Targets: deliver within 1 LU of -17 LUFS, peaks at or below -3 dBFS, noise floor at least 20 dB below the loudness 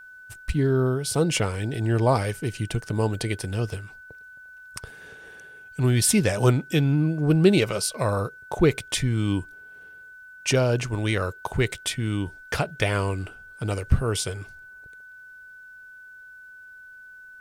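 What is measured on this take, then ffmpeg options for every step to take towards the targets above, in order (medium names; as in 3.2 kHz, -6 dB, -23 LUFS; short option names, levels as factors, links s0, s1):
steady tone 1.5 kHz; tone level -43 dBFS; loudness -24.5 LUFS; peak level -5.5 dBFS; loudness target -17.0 LUFS
-> -af "bandreject=f=1500:w=30"
-af "volume=2.37,alimiter=limit=0.708:level=0:latency=1"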